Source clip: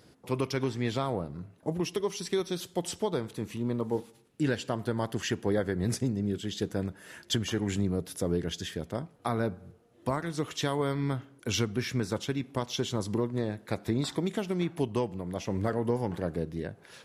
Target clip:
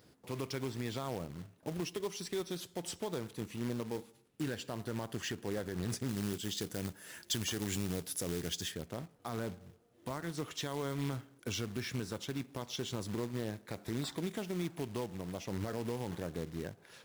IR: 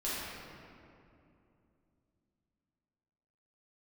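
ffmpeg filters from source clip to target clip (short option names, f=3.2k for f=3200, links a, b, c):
-filter_complex "[0:a]alimiter=limit=-22.5dB:level=0:latency=1:release=54,acrusher=bits=3:mode=log:mix=0:aa=0.000001,asettb=1/sr,asplit=3[a][b][c];[a]atrim=end=6.084[d];[b]atrim=start=6.08:end=8.72,asetpts=PTS-STARTPTS,afade=t=in:d=0.004:c=qsin,afade=t=out:st=2.636:d=0.004:c=qsin,highshelf=f=3.9k:g=9.5[e];[c]atrim=start=8.716[f];[d][e]acrossfade=d=0.004:c1=hsin:c2=qsin[g];[g][f]acrossfade=d=0.004:c1=qsin:c2=hsin,volume=-5.5dB"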